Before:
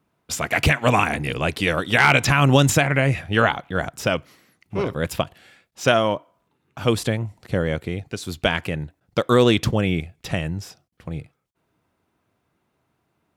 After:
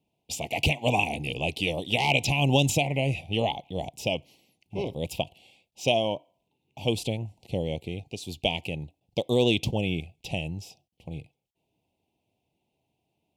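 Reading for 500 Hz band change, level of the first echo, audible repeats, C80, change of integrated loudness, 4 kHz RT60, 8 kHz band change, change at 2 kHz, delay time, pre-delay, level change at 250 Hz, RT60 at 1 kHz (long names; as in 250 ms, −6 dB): −6.5 dB, no echo audible, no echo audible, no reverb audible, −7.0 dB, no reverb audible, −6.5 dB, −9.5 dB, no echo audible, no reverb audible, −7.0 dB, no reverb audible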